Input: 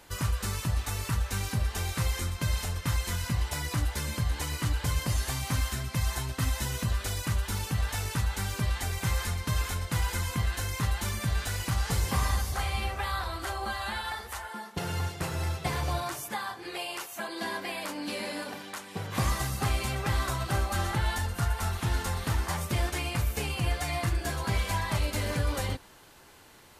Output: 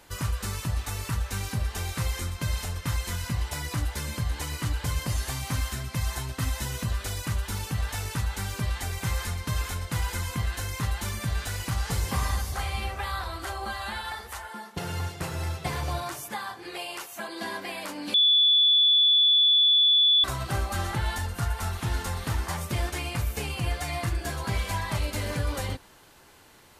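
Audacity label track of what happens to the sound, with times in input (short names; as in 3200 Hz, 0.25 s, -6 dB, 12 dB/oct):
18.140000	20.240000	bleep 3450 Hz -16.5 dBFS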